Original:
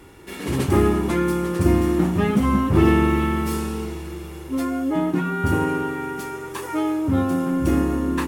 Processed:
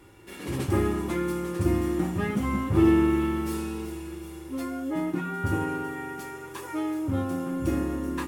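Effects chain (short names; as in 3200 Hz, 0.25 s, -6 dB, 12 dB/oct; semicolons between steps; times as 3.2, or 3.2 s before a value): resonator 110 Hz, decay 0.17 s, harmonics odd, mix 70%; on a send: thin delay 0.379 s, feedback 66%, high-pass 5500 Hz, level -9 dB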